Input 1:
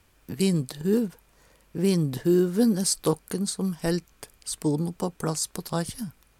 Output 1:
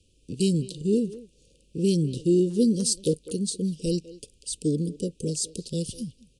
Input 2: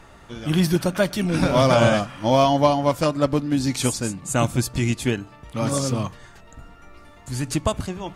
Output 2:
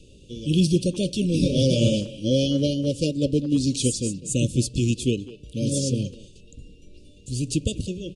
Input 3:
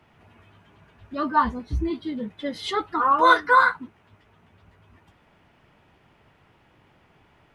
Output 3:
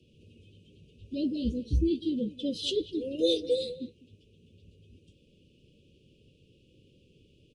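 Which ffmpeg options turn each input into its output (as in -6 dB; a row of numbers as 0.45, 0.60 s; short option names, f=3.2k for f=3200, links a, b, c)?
-filter_complex "[0:a]asuperstop=centerf=1200:order=20:qfactor=0.58,asplit=2[a][b];[b]adelay=200,highpass=300,lowpass=3.4k,asoftclip=type=hard:threshold=-17.5dB,volume=-15dB[c];[a][c]amix=inputs=2:normalize=0" -ar 22050 -c:a aac -b:a 96k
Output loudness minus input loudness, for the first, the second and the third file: 0.0, -2.5, -8.5 LU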